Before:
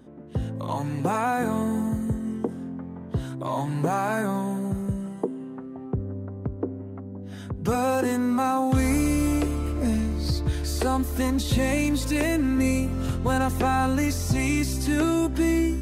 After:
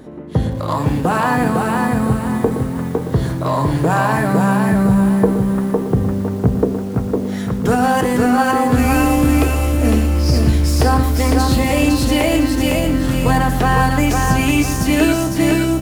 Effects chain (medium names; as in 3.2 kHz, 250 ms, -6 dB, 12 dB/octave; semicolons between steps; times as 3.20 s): self-modulated delay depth 0.053 ms; in parallel at -0.5 dB: gain riding; on the sum: echo from a far wall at 20 m, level -11 dB; formant shift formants +2 st; on a send at -10 dB: reverberation RT60 0.45 s, pre-delay 6 ms; on the sum: bit-crushed delay 506 ms, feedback 35%, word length 7-bit, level -3 dB; trim +1.5 dB